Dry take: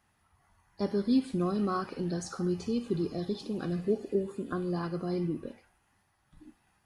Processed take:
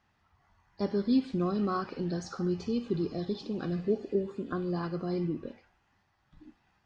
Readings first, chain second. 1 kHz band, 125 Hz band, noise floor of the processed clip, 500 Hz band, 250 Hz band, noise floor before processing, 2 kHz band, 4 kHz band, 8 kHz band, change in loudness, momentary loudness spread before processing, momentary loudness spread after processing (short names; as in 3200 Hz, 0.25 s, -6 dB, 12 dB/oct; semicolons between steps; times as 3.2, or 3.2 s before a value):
0.0 dB, 0.0 dB, -73 dBFS, 0.0 dB, 0.0 dB, -72 dBFS, 0.0 dB, -0.5 dB, -6.0 dB, 0.0 dB, 7 LU, 7 LU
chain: LPF 5900 Hz 24 dB/oct